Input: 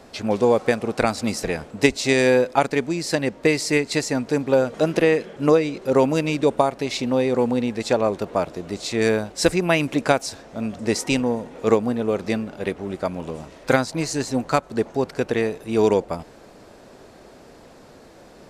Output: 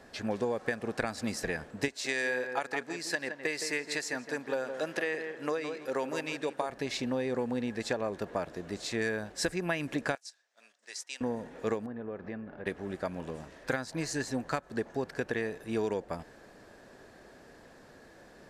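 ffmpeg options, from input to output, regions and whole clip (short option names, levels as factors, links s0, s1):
-filter_complex "[0:a]asettb=1/sr,asplit=3[s0][s1][s2];[s0]atrim=end=1.884[s3];[s1]atrim=start=1.88:end=6.7,asetpts=PTS-STARTPTS,afade=t=in:d=0.004:c=qsin,afade=t=out:st=4.816:d=0.004:c=qsin,highpass=f=680:p=1,asplit=2[s4][s5];[s5]adelay=165,lowpass=f=1700:p=1,volume=0.355,asplit=2[s6][s7];[s7]adelay=165,lowpass=f=1700:p=1,volume=0.27,asplit=2[s8][s9];[s9]adelay=165,lowpass=f=1700:p=1,volume=0.27[s10];[s4][s6][s8][s10]amix=inputs=4:normalize=0,atrim=end_sample=212562[s11];[s2]atrim=start=6.696[s12];[s3][s11]acrossfade=d=0.004:c1=hsin:c2=qsin[s13];[s13][s12]acrossfade=d=0.004:c1=qsin:c2=hsin,asettb=1/sr,asplit=3[s14][s15][s16];[s14]atrim=end=10.154[s17];[s15]atrim=start=10.15:end=11.21,asetpts=PTS-STARTPTS,afade=t=in:d=0.004:c=qsin,afade=t=out:st=1.056:d=0.004:c=qsin,agate=range=0.282:threshold=0.0282:ratio=16:release=100:detection=peak,highpass=400,lowpass=6500,aderivative[s18];[s16]atrim=start=11.206[s19];[s17][s18]acrossfade=d=0.004:c1=hsin:c2=qsin[s20];[s20][s19]acrossfade=d=0.004:c1=qsin:c2=hsin,asettb=1/sr,asplit=3[s21][s22][s23];[s21]atrim=end=11.864[s24];[s22]atrim=start=11.86:end=12.66,asetpts=PTS-STARTPTS,afade=t=in:d=0.004:c=qsin,afade=t=out:st=0.796:d=0.004:c=qsin,lowpass=1800,acompressor=threshold=0.0224:ratio=2:attack=3.2:release=140:knee=1:detection=peak[s25];[s23]atrim=start=12.656[s26];[s24][s25]acrossfade=d=0.004:c1=hsin:c2=qsin[s27];[s27][s26]acrossfade=d=0.004:c1=qsin:c2=hsin,equalizer=f=1700:w=6.3:g=12,acompressor=threshold=0.112:ratio=6,volume=0.376"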